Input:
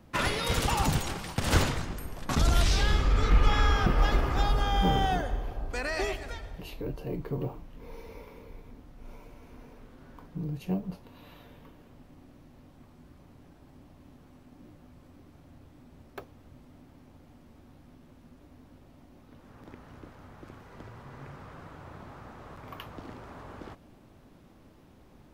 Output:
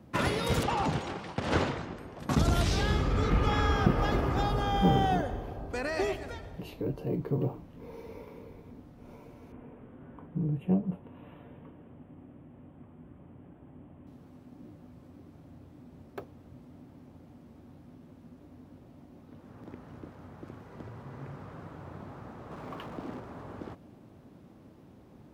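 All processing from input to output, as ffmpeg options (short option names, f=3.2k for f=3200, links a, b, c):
-filter_complex "[0:a]asettb=1/sr,asplit=3[a][b][c];[a]atrim=end=0.634[d];[b]atrim=start=0.63:end=2.2,asetpts=PTS-STARTPTS,afade=t=in:d=0.004:c=qsin,afade=t=out:st=1.566:d=0.004:c=qsin,lowpass=6k,bass=f=250:g=-8,treble=f=4k:g=-5[e];[c]atrim=start=2.196[f];[d][e]acrossfade=d=0.004:c1=hsin:c2=qsin[g];[g][f]acrossfade=d=0.004:c1=qsin:c2=hsin,asettb=1/sr,asplit=3[h][i][j];[h]atrim=end=9.524[k];[i]atrim=start=9.52:end=14.07,asetpts=PTS-STARTPTS,afade=t=in:d=0.004:c=qsin,afade=t=out:st=4.546:d=0.004:c=qsin,asuperstop=centerf=5100:order=8:qfactor=1.2,aemphasis=mode=reproduction:type=50fm[l];[j]atrim=start=14.066[m];[k][l]acrossfade=d=0.004:c1=hsin:c2=qsin[n];[n][m]acrossfade=d=0.004:c1=qsin:c2=hsin,asettb=1/sr,asplit=3[o][p][q];[o]atrim=end=22.514[r];[p]atrim=start=22.51:end=23.2,asetpts=PTS-STARTPTS,afade=t=in:d=0.004:c=qsin,afade=t=out:st=0.686:d=0.004:c=qsin,aeval=exprs='val(0)+0.5*0.00668*sgn(val(0))':c=same,lowpass=f=3.6k:p=1,equalizer=f=94:w=1.9:g=-9.5[s];[q]atrim=start=23.196[t];[r][s]acrossfade=d=0.004:c1=hsin:c2=qsin[u];[u][t]acrossfade=d=0.004:c1=qsin:c2=hsin,highpass=91,tiltshelf=f=830:g=4.5"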